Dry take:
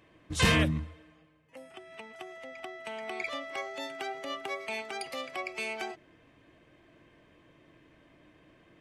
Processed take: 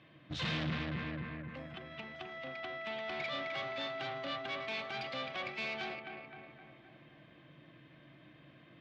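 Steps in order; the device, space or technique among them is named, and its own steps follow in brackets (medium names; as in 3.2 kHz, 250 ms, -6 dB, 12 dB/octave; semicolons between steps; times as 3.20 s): analogue delay pedal into a guitar amplifier (bucket-brigade echo 259 ms, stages 4096, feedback 54%, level -9 dB; valve stage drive 38 dB, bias 0.55; cabinet simulation 87–4400 Hz, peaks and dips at 87 Hz -7 dB, 140 Hz +9 dB, 420 Hz -9 dB, 900 Hz -5 dB, 3.6 kHz +5 dB); trim +3.5 dB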